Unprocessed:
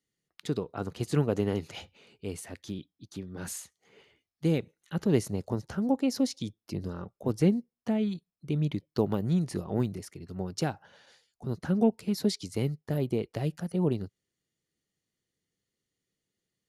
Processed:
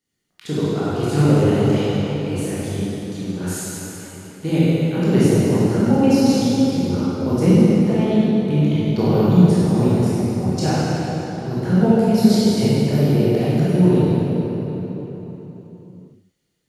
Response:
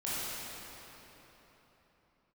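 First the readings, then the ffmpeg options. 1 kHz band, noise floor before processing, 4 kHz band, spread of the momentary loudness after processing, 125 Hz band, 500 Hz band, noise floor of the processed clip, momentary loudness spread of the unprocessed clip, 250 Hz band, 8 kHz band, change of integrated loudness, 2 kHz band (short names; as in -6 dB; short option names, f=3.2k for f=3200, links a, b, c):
+14.0 dB, under -85 dBFS, +12.0 dB, 13 LU, +14.5 dB, +13.0 dB, -56 dBFS, 15 LU, +14.0 dB, +11.0 dB, +13.0 dB, +12.5 dB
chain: -filter_complex "[1:a]atrim=start_sample=2205[a];[0:a][a]afir=irnorm=-1:irlink=0,volume=6.5dB"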